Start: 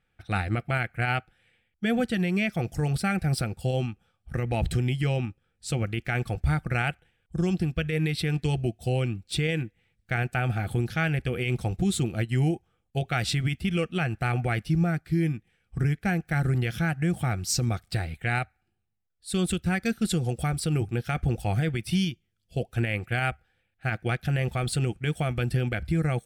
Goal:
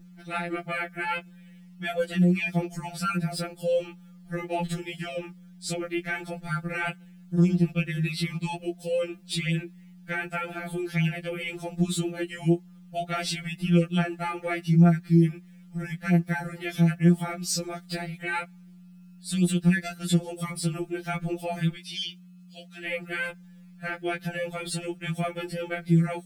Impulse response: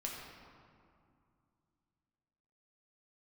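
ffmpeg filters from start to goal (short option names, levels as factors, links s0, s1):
-filter_complex "[0:a]asettb=1/sr,asplit=3[s0][s1][s2];[s0]atrim=end=21.744[s3];[s1]atrim=start=21.74:end=22.86,asetpts=PTS-STARTPTS,afade=t=in:d=0.004:c=qsin,afade=t=out:st=1.116:d=0.004:c=qsin,bandpass=f=4000:t=q:w=1.2:csg=0[s4];[s2]atrim=start=22.856[s5];[s3][s4]acrossfade=d=0.004:c1=hsin:c2=qsin[s6];[s6][s5]acrossfade=d=0.004:c1=qsin:c2=hsin,asplit=2[s7][s8];[s8]acompressor=threshold=0.0178:ratio=16,volume=0.891[s9];[s7][s9]amix=inputs=2:normalize=0,aeval=exprs='val(0)+0.00794*(sin(2*PI*60*n/s)+sin(2*PI*2*60*n/s)/2+sin(2*PI*3*60*n/s)/3+sin(2*PI*4*60*n/s)/4+sin(2*PI*5*60*n/s)/5)':c=same,acrusher=bits=10:mix=0:aa=0.000001,afftfilt=real='re*2.83*eq(mod(b,8),0)':imag='im*2.83*eq(mod(b,8),0)':win_size=2048:overlap=0.75"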